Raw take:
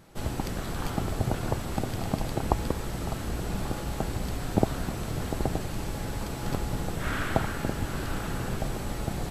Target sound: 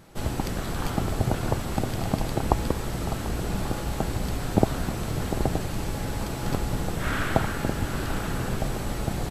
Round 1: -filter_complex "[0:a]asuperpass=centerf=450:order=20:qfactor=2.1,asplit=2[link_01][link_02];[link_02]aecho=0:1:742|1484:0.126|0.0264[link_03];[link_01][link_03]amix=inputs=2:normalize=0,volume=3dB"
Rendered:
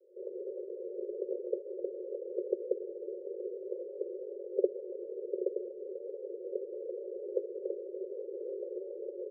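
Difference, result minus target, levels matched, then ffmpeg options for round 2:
500 Hz band +8.0 dB
-filter_complex "[0:a]asplit=2[link_01][link_02];[link_02]aecho=0:1:742|1484:0.126|0.0264[link_03];[link_01][link_03]amix=inputs=2:normalize=0,volume=3dB"

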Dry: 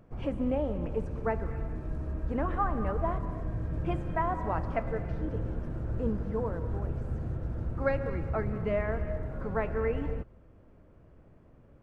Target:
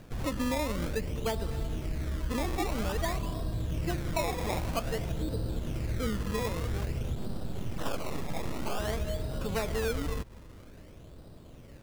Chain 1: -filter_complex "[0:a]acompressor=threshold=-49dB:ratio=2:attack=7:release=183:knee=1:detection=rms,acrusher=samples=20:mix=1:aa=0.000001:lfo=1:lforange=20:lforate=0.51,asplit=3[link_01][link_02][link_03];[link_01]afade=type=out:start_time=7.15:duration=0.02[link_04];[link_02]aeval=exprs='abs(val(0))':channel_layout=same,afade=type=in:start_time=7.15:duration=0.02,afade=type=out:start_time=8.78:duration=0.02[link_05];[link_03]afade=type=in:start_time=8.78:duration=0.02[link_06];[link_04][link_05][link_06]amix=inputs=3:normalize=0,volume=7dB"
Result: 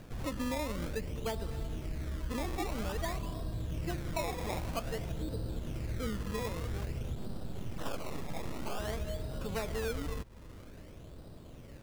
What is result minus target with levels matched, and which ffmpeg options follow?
downward compressor: peak gain reduction +4.5 dB
-filter_complex "[0:a]acompressor=threshold=-40dB:ratio=2:attack=7:release=183:knee=1:detection=rms,acrusher=samples=20:mix=1:aa=0.000001:lfo=1:lforange=20:lforate=0.51,asplit=3[link_01][link_02][link_03];[link_01]afade=type=out:start_time=7.15:duration=0.02[link_04];[link_02]aeval=exprs='abs(val(0))':channel_layout=same,afade=type=in:start_time=7.15:duration=0.02,afade=type=out:start_time=8.78:duration=0.02[link_05];[link_03]afade=type=in:start_time=8.78:duration=0.02[link_06];[link_04][link_05][link_06]amix=inputs=3:normalize=0,volume=7dB"

